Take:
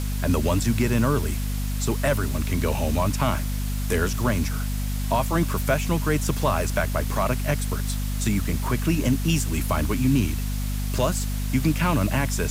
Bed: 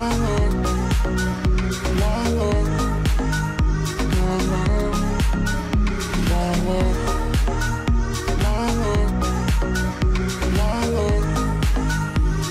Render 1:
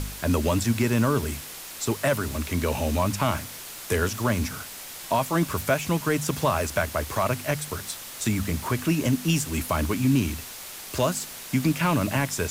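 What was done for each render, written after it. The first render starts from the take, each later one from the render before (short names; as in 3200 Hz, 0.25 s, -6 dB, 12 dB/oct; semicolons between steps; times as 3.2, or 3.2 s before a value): de-hum 50 Hz, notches 5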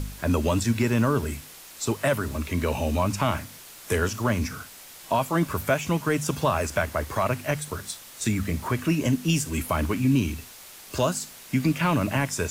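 noise print and reduce 6 dB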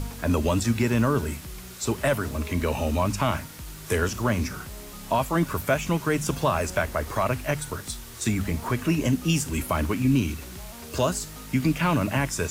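add bed -21.5 dB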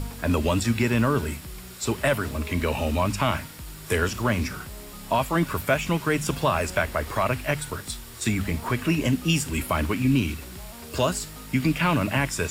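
notch 6200 Hz, Q 9.6; dynamic EQ 2600 Hz, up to +4 dB, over -41 dBFS, Q 0.85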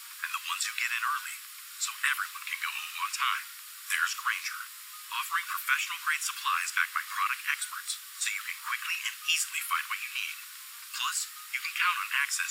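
steep high-pass 1100 Hz 72 dB/oct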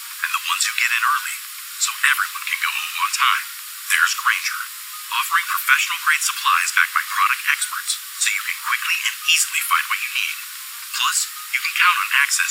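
gain +12 dB; limiter -2 dBFS, peak gain reduction 1.5 dB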